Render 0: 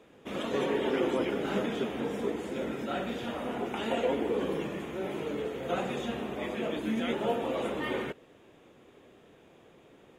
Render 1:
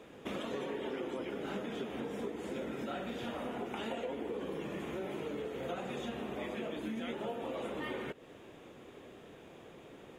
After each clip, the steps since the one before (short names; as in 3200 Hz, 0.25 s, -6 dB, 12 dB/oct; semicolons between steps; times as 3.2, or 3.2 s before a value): compressor 6:1, threshold -41 dBFS, peak gain reduction 16 dB; gain +4 dB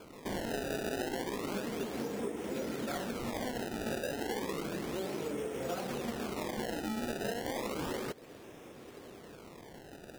decimation with a swept rate 23×, swing 160% 0.32 Hz; gain +2.5 dB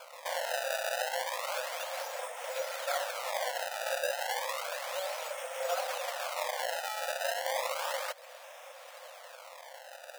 brick-wall FIR high-pass 500 Hz; gain +6.5 dB